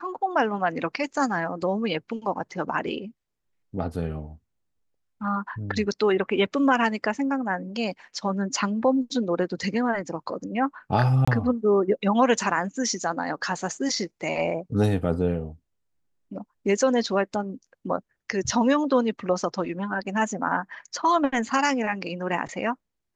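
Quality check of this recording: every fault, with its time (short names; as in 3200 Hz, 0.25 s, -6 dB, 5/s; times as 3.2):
11.25–11.28 gap 25 ms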